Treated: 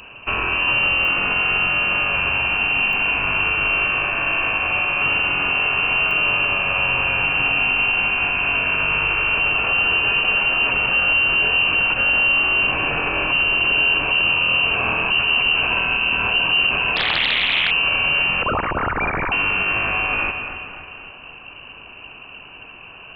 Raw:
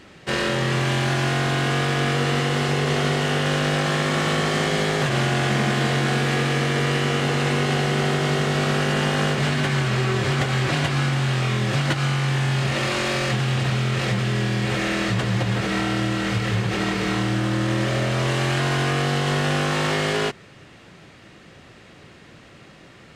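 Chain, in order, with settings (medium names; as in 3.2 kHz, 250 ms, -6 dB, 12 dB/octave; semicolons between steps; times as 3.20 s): 18.42–19.32 s: formants replaced by sine waves; two-band feedback delay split 680 Hz, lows 188 ms, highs 265 ms, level -13 dB; peak limiter -18 dBFS, peak gain reduction 9 dB; peaking EQ 830 Hz -14.5 dB 0.95 oct; frequency inversion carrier 2.9 kHz; clicks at 1.05/2.93/6.11 s, -30 dBFS; 16.96–17.71 s: loudspeaker Doppler distortion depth 0.86 ms; trim +8.5 dB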